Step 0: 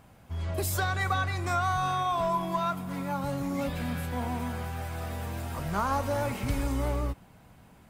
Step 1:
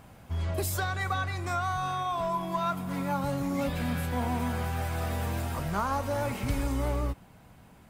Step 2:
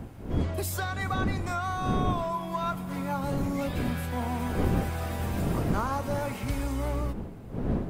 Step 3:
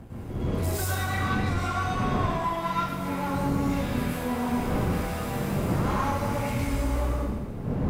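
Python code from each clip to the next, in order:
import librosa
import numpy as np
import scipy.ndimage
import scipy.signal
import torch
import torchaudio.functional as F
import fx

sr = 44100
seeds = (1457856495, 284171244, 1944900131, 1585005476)

y1 = fx.rider(x, sr, range_db=4, speed_s=0.5)
y2 = fx.dmg_wind(y1, sr, seeds[0], corner_hz=240.0, level_db=-32.0)
y2 = F.gain(torch.from_numpy(y2), -1.0).numpy()
y3 = fx.tube_stage(y2, sr, drive_db=28.0, bias=0.45)
y3 = fx.rev_plate(y3, sr, seeds[1], rt60_s=1.1, hf_ratio=0.95, predelay_ms=90, drr_db=-9.0)
y3 = F.gain(torch.from_numpy(y3), -3.0).numpy()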